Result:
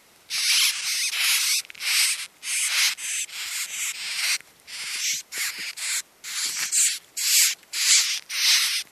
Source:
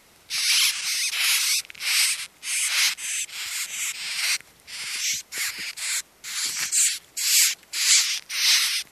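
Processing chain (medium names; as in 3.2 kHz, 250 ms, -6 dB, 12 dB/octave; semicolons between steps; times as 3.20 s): bass shelf 110 Hz -10 dB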